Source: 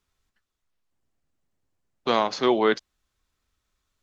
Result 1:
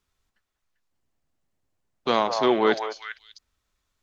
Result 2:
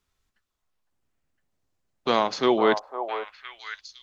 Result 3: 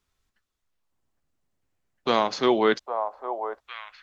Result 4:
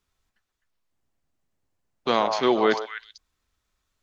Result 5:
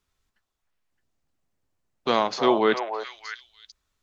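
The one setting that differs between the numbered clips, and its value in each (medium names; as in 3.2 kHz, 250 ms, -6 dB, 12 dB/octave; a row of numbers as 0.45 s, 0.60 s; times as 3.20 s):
repeats whose band climbs or falls, time: 197 ms, 508 ms, 808 ms, 128 ms, 308 ms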